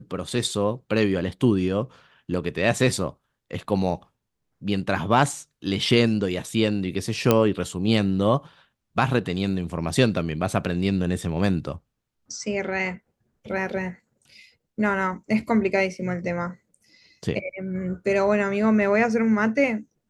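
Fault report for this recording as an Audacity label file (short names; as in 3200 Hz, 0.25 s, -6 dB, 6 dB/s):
7.310000	7.310000	pop -4 dBFS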